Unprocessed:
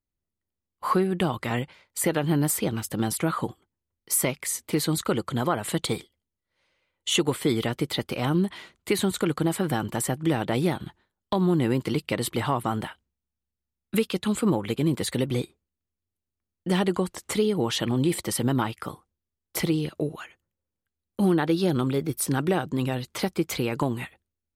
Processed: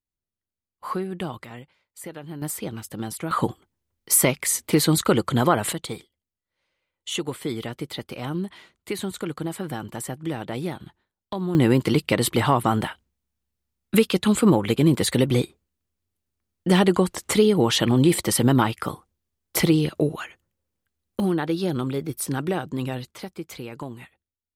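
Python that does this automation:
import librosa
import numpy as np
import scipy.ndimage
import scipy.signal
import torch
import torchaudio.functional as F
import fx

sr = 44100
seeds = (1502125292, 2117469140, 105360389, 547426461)

y = fx.gain(x, sr, db=fx.steps((0.0, -5.5), (1.45, -13.0), (2.42, -5.0), (3.31, 6.0), (5.73, -5.0), (11.55, 6.0), (21.2, -1.5), (23.11, -9.0)))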